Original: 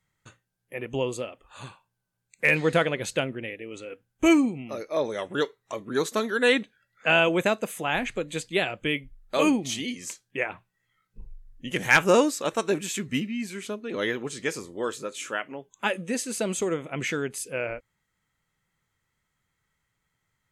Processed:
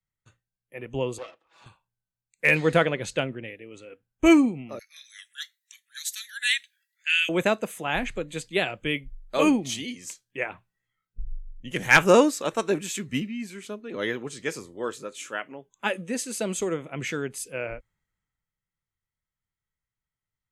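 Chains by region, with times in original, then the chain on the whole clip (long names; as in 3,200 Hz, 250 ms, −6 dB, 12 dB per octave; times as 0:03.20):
0:01.18–0:01.66: lower of the sound and its delayed copy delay 6.1 ms + high-pass filter 79 Hz + three-way crossover with the lows and the highs turned down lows −17 dB, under 270 Hz, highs −17 dB, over 6,800 Hz
0:02.80–0:03.48: low-pass filter 9,100 Hz + one half of a high-frequency compander decoder only
0:04.79–0:07.29: elliptic high-pass filter 1,700 Hz, stop band 50 dB + high-shelf EQ 7,700 Hz +11.5 dB
whole clip: low-shelf EQ 64 Hz +8.5 dB; multiband upward and downward expander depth 40%; level −1 dB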